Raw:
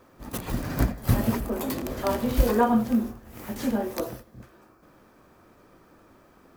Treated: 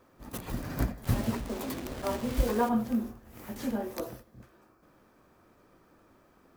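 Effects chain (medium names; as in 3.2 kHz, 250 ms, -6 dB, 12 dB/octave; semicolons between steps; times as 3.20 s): 1.04–2.69 s: send-on-delta sampling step -32 dBFS; trim -6 dB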